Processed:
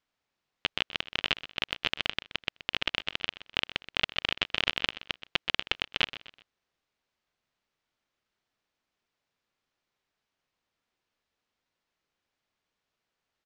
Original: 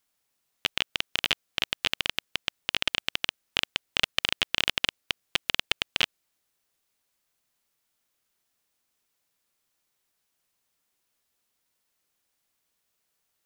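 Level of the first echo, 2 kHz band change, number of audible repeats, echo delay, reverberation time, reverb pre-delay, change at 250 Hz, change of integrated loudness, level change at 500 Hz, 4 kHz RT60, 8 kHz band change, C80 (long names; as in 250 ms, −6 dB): −15.0 dB, −2.0 dB, 3, 126 ms, no reverb audible, no reverb audible, 0.0 dB, −2.5 dB, −0.5 dB, no reverb audible, −12.0 dB, no reverb audible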